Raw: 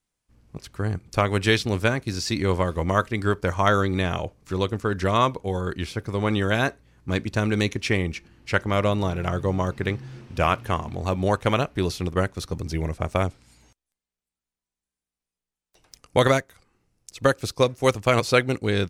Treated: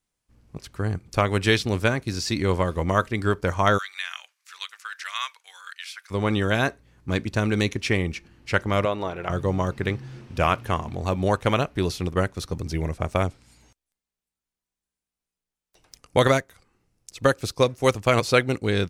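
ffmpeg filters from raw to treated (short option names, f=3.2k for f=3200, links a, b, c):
-filter_complex "[0:a]asplit=3[a][b][c];[a]afade=t=out:st=3.77:d=0.02[d];[b]highpass=f=1.5k:w=0.5412,highpass=f=1.5k:w=1.3066,afade=t=in:st=3.77:d=0.02,afade=t=out:st=6.1:d=0.02[e];[c]afade=t=in:st=6.1:d=0.02[f];[d][e][f]amix=inputs=3:normalize=0,asettb=1/sr,asplit=3[g][h][i];[g]atrim=end=8.854[j];[h]atrim=start=8.85:end=9.3,asetpts=PTS-STARTPTS,afade=t=in:d=0.004:c=qsin,afade=t=out:st=0.446:d=0.004:c=qsin,bass=f=250:g=-13,treble=f=4k:g=-11[k];[i]atrim=start=9.296[l];[j][k]acrossfade=d=0.004:c1=hsin:c2=qsin[m];[m][l]acrossfade=d=0.004:c1=qsin:c2=hsin"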